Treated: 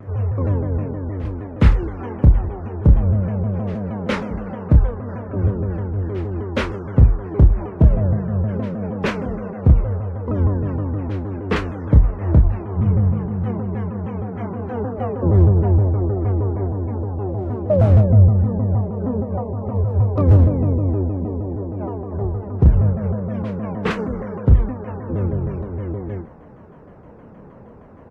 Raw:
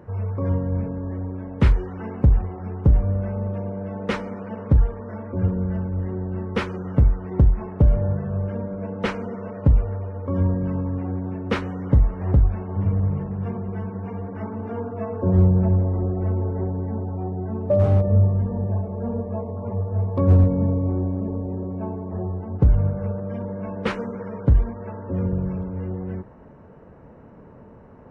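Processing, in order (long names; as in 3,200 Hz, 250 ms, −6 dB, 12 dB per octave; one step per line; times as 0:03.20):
double-tracking delay 30 ms −6 dB
on a send: backwards echo 414 ms −19.5 dB
on the sum: pitch modulation by a square or saw wave saw down 6.4 Hz, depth 250 cents
level +2.5 dB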